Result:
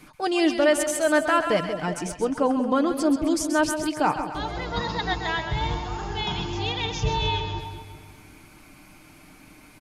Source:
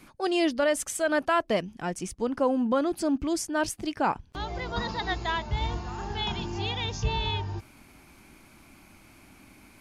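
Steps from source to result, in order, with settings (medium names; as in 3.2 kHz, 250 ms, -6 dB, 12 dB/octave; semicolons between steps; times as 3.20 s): comb 6.6 ms, depth 41%; two-band feedback delay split 730 Hz, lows 186 ms, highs 132 ms, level -8 dB; trim +2.5 dB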